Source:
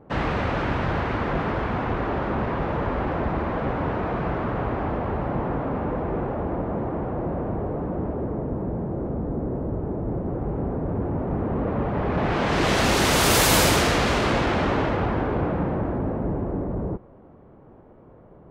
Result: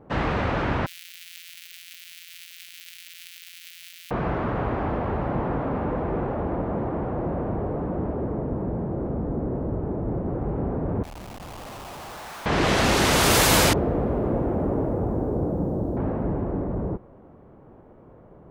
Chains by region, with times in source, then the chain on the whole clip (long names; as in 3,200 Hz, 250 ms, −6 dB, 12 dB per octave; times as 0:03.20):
0:00.86–0:04.11: samples sorted by size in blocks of 256 samples + inverse Chebyshev high-pass filter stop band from 1,000 Hz, stop band 50 dB + parametric band 6,700 Hz −10 dB 2.4 octaves
0:11.03–0:12.46: Bessel high-pass filter 1,300 Hz, order 8 + spectral tilt −4.5 dB per octave + comparator with hysteresis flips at −41 dBFS
0:13.73–0:15.97: Chebyshev low-pass filter 510 Hz + bit-depth reduction 12 bits, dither triangular
whole clip: no processing